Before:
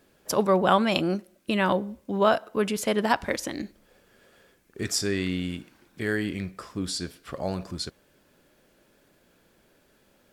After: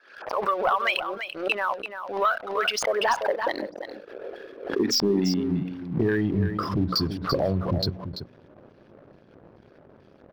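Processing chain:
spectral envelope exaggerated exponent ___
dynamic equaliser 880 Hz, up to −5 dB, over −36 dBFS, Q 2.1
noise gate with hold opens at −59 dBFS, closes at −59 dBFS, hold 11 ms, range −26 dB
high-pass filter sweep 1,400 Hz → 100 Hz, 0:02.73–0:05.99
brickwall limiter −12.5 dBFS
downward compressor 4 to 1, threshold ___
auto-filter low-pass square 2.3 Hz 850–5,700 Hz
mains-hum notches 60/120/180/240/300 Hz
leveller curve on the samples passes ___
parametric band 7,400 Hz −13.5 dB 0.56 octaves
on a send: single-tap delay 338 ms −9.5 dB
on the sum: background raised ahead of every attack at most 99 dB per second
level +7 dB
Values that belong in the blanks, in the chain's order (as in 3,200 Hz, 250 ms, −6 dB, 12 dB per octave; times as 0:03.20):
2, −36 dBFS, 2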